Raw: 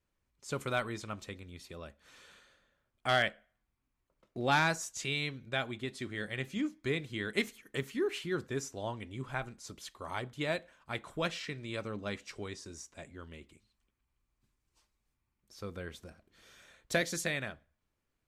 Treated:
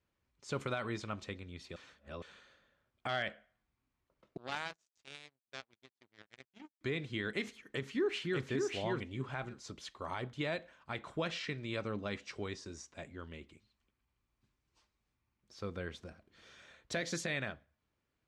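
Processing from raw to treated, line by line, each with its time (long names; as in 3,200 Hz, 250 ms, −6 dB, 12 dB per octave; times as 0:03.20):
0:01.76–0:02.22: reverse
0:04.37–0:06.81: power curve on the samples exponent 3
0:07.53–0:08.44: delay throw 590 ms, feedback 10%, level −2.5 dB
whole clip: high-pass filter 51 Hz; brickwall limiter −26.5 dBFS; low-pass filter 5,500 Hz 12 dB per octave; level +1 dB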